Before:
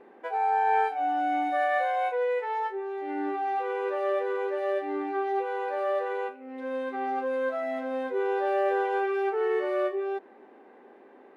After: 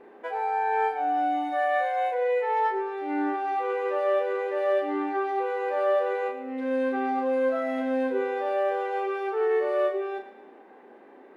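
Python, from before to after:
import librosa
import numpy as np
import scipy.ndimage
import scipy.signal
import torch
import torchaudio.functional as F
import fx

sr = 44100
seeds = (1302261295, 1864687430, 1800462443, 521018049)

y = fx.rider(x, sr, range_db=3, speed_s=0.5)
y = fx.doubler(y, sr, ms=34.0, db=-5)
y = fx.echo_feedback(y, sr, ms=111, feedback_pct=48, wet_db=-12.0)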